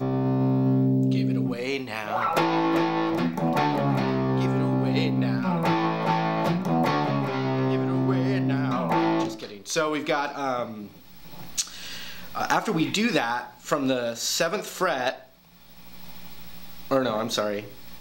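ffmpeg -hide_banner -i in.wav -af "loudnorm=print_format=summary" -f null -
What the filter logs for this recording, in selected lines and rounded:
Input Integrated:    -25.3 LUFS
Input True Peak:      -9.3 dBTP
Input LRA:             6.4 LU
Input Threshold:     -36.2 LUFS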